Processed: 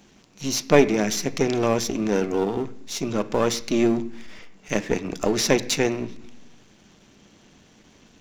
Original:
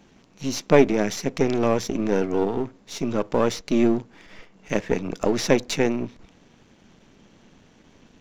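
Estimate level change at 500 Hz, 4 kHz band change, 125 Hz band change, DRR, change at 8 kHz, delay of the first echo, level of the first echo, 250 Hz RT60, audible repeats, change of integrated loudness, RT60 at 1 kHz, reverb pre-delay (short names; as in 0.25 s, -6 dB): -0.5 dB, +4.5 dB, 0.0 dB, 10.0 dB, +6.0 dB, none, none, 0.90 s, none, 0.0 dB, 0.70 s, 3 ms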